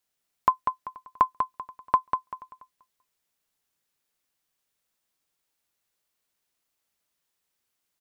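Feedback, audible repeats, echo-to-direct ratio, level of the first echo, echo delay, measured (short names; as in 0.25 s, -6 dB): 27%, 3, -5.5 dB, -6.0 dB, 0.194 s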